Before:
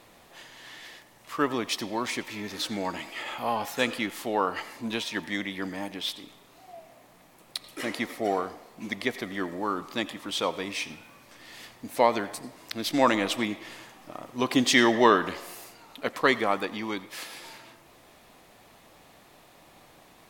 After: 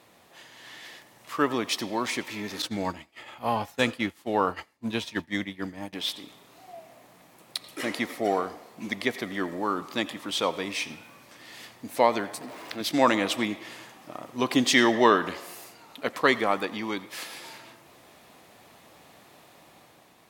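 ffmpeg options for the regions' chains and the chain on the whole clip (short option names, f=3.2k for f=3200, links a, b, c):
-filter_complex "[0:a]asettb=1/sr,asplit=3[a][b][c];[a]atrim=end=2.624[d];[b]atrim=start=2.62:end=5.93,asetpts=PTS-STARTPTS,afade=t=in:d=0.004:c=qsin,afade=t=out:st=3.306:d=0.004:c=qsin,agate=range=-33dB:threshold=-29dB:ratio=3:release=100:detection=peak,equalizer=f=72:t=o:w=1.7:g=15[e];[c]atrim=start=5.926[f];[d][e]acrossfade=d=0.004:c1=hsin:c2=qsin[g];[g][f]acrossfade=d=0.004:c1=qsin:c2=hsin,asettb=1/sr,asplit=3[h][i][j];[h]atrim=end=12.414[k];[i]atrim=start=12.41:end=12.81,asetpts=PTS-STARTPTS,afade=t=in:d=0.004:c=qsin,afade=t=out:st=0.396:d=0.004:c=qsin,aeval=exprs='val(0)+0.5*0.0133*sgn(val(0))':c=same,bass=f=250:g=-9,treble=f=4k:g=-10[l];[j]atrim=start=12.806[m];[k][l]acrossfade=d=0.004:c1=hsin:c2=qsin[n];[n][m]acrossfade=d=0.004:c1=qsin:c2=hsin,highpass=78,dynaudnorm=f=190:g=7:m=4dB,volume=-2.5dB"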